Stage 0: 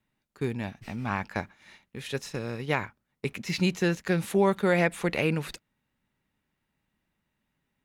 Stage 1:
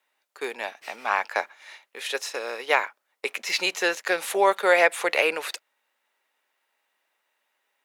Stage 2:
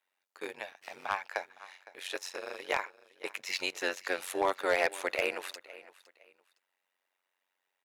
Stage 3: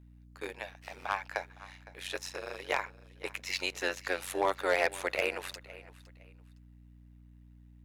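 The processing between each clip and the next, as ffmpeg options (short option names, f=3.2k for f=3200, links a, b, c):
-af "highpass=f=500:w=0.5412,highpass=f=500:w=1.3066,volume=8dB"
-af "tremolo=f=92:d=0.919,aecho=1:1:511|1022:0.106|0.0286,asoftclip=type=hard:threshold=-14dB,volume=-5dB"
-af "aeval=exprs='val(0)+0.002*(sin(2*PI*60*n/s)+sin(2*PI*2*60*n/s)/2+sin(2*PI*3*60*n/s)/3+sin(2*PI*4*60*n/s)/4+sin(2*PI*5*60*n/s)/5)':c=same"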